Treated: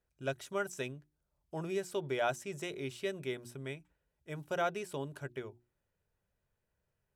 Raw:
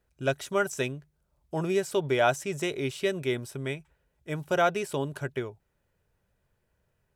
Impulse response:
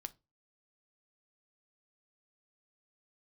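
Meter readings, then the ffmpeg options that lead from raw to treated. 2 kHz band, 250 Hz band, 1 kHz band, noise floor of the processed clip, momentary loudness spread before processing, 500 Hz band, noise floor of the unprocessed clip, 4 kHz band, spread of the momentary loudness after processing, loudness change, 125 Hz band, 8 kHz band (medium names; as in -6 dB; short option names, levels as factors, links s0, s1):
-9.0 dB, -9.5 dB, -9.0 dB, -84 dBFS, 12 LU, -9.0 dB, -76 dBFS, -9.0 dB, 12 LU, -9.0 dB, -9.5 dB, -9.0 dB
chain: -af "bandreject=f=60:t=h:w=6,bandreject=f=120:t=h:w=6,bandreject=f=180:t=h:w=6,bandreject=f=240:t=h:w=6,bandreject=f=300:t=h:w=6,bandreject=f=360:t=h:w=6,volume=0.355"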